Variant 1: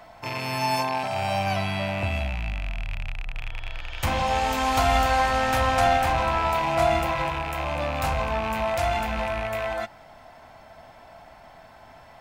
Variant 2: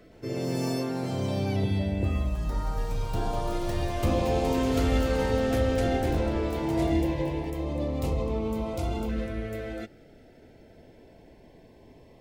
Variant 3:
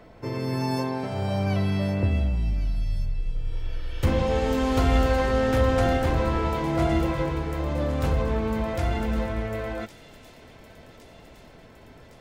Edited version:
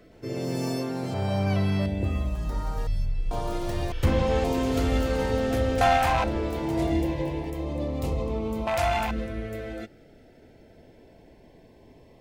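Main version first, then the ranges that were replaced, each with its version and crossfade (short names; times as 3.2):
2
1.14–1.86 from 3
2.87–3.31 from 3
3.92–4.44 from 3
5.81–6.24 from 1
8.67–9.11 from 1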